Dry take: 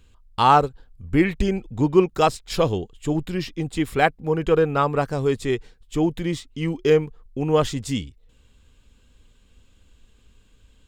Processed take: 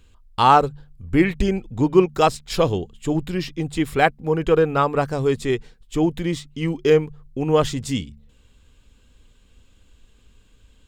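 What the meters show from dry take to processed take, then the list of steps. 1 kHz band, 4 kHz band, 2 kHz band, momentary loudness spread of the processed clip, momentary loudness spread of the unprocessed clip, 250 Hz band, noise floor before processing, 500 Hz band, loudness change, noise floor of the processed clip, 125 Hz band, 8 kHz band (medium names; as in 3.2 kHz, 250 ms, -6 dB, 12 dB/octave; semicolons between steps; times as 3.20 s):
+1.5 dB, +1.5 dB, +1.5 dB, 10 LU, 10 LU, +1.5 dB, -57 dBFS, +1.5 dB, +1.5 dB, -55 dBFS, +1.0 dB, +1.5 dB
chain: de-hum 73.24 Hz, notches 3; trim +1.5 dB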